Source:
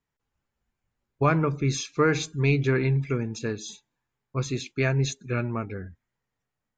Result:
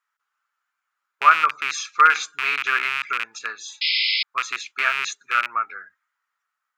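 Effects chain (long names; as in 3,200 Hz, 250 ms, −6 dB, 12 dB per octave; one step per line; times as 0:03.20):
loose part that buzzes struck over −25 dBFS, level −17 dBFS
sound drawn into the spectrogram noise, 0:03.81–0:04.23, 2,000–5,300 Hz −25 dBFS
high-pass with resonance 1,300 Hz, resonance Q 5.4
level +2 dB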